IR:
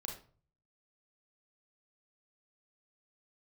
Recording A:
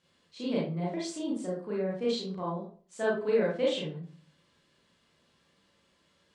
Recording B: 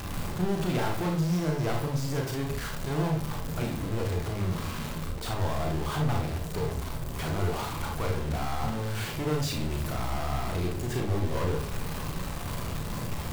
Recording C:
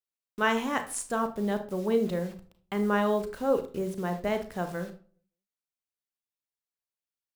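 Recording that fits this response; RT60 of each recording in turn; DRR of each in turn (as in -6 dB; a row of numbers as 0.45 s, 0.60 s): B; 0.45 s, 0.45 s, 0.45 s; -5.0 dB, 1.0 dB, 8.0 dB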